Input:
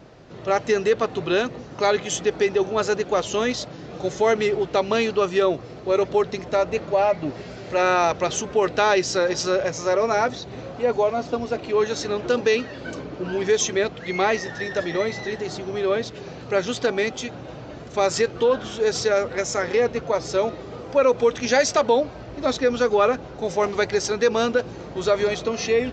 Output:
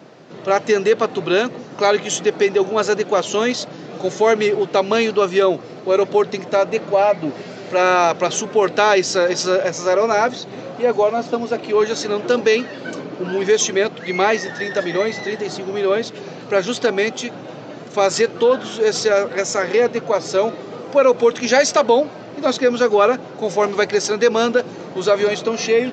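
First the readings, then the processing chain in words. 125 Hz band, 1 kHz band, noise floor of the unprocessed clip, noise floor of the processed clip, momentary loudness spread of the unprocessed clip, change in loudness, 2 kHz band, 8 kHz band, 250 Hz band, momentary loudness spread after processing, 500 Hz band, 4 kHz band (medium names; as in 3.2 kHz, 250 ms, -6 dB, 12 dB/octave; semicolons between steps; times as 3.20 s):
+1.0 dB, +4.5 dB, -39 dBFS, -35 dBFS, 10 LU, +4.5 dB, +4.5 dB, +4.5 dB, +4.5 dB, 10 LU, +4.5 dB, +4.5 dB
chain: high-pass 150 Hz 24 dB/octave; trim +4.5 dB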